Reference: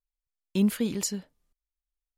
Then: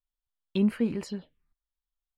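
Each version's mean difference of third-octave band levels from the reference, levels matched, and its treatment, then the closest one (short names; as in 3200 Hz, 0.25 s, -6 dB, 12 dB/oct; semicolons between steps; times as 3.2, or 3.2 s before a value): 4.5 dB: resonant high shelf 4700 Hz -12.5 dB, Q 3; envelope phaser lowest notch 380 Hz, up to 3500 Hz, full sweep at -28.5 dBFS; doubler 13 ms -12 dB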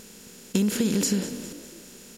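8.5 dB: per-bin compression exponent 0.4; compressor 6:1, threshold -27 dBFS, peak gain reduction 9.5 dB; on a send: frequency-shifting echo 0.202 s, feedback 47%, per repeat +44 Hz, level -14 dB; on the sum: gain +6.5 dB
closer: first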